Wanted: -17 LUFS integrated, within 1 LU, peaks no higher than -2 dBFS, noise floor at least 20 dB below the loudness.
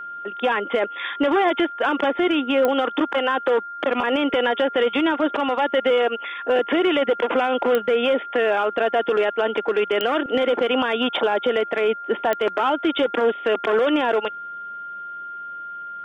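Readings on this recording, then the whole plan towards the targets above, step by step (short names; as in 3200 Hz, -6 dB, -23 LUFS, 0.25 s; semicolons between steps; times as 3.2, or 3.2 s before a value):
clicks 4; steady tone 1400 Hz; tone level -31 dBFS; loudness -21.0 LUFS; peak -9.0 dBFS; loudness target -17.0 LUFS
-> de-click; notch 1400 Hz, Q 30; gain +4 dB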